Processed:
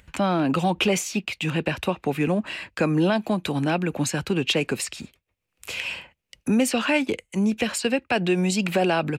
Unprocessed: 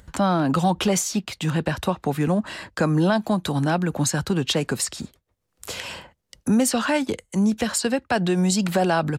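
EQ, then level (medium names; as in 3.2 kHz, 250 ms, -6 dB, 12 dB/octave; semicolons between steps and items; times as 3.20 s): peaking EQ 2.5 kHz +15 dB 0.64 oct; treble shelf 12 kHz +3 dB; dynamic bell 380 Hz, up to +7 dB, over -33 dBFS, Q 0.74; -6.0 dB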